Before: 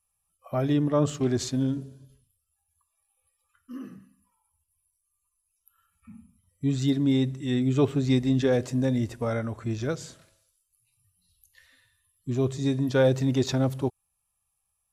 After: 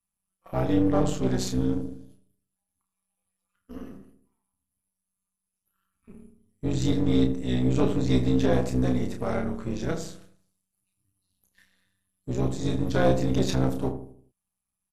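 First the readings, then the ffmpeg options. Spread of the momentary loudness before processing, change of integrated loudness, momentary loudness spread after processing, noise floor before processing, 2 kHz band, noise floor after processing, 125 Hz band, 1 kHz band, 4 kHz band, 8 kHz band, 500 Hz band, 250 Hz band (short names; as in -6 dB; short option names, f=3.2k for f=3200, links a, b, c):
12 LU, 0.0 dB, 16 LU, -78 dBFS, -0.5 dB, -85 dBFS, -0.5 dB, +3.0 dB, -0.5 dB, 0.0 dB, -0.5 dB, 0.0 dB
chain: -filter_complex "[0:a]aeval=exprs='if(lt(val(0),0),0.447*val(0),val(0))':c=same,agate=range=-8dB:threshold=-58dB:ratio=16:detection=peak,tremolo=f=190:d=0.857,acontrast=23,asplit=2[a][b];[b]adelay=31,volume=-5.5dB[c];[a][c]amix=inputs=2:normalize=0,asplit=2[d][e];[e]adelay=79,lowpass=f=890:p=1,volume=-7.5dB,asplit=2[f][g];[g]adelay=79,lowpass=f=890:p=1,volume=0.47,asplit=2[h][i];[i]adelay=79,lowpass=f=890:p=1,volume=0.47,asplit=2[j][k];[k]adelay=79,lowpass=f=890:p=1,volume=0.47,asplit=2[l][m];[m]adelay=79,lowpass=f=890:p=1,volume=0.47[n];[f][h][j][l][n]amix=inputs=5:normalize=0[o];[d][o]amix=inputs=2:normalize=0" -ar 32000 -c:a libmp3lame -b:a 64k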